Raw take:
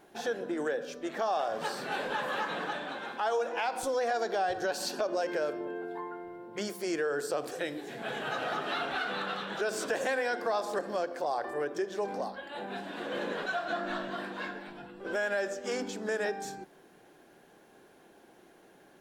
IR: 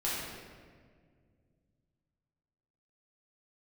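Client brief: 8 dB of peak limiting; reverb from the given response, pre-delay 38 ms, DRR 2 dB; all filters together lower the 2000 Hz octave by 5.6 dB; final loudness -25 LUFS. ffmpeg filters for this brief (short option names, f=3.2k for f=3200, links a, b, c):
-filter_complex "[0:a]equalizer=f=2k:t=o:g=-8,alimiter=level_in=5.5dB:limit=-24dB:level=0:latency=1,volume=-5.5dB,asplit=2[a][b];[1:a]atrim=start_sample=2205,adelay=38[c];[b][c]afir=irnorm=-1:irlink=0,volume=-9dB[d];[a][d]amix=inputs=2:normalize=0,volume=11.5dB"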